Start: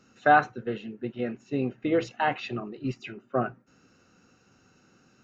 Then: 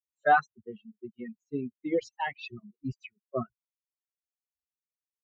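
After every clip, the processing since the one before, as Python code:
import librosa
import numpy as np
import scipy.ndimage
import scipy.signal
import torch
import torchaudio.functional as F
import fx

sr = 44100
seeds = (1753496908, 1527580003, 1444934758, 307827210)

y = fx.bin_expand(x, sr, power=3.0)
y = fx.dereverb_blind(y, sr, rt60_s=0.69)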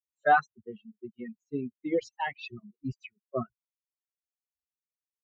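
y = x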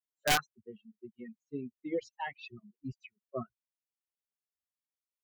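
y = (np.mod(10.0 ** (14.0 / 20.0) * x + 1.0, 2.0) - 1.0) / 10.0 ** (14.0 / 20.0)
y = y * librosa.db_to_amplitude(-6.0)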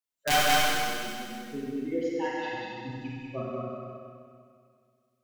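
y = x + 10.0 ** (-3.0 / 20.0) * np.pad(x, (int(192 * sr / 1000.0), 0))[:len(x)]
y = fx.rev_schroeder(y, sr, rt60_s=2.2, comb_ms=32, drr_db=-4.5)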